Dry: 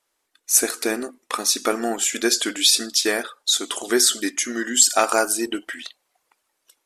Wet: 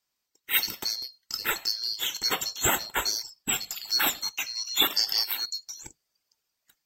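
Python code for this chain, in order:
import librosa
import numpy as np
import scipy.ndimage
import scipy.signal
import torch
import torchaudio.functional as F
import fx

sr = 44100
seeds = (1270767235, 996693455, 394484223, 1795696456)

y = fx.band_swap(x, sr, width_hz=4000)
y = y * 10.0 ** (-7.5 / 20.0)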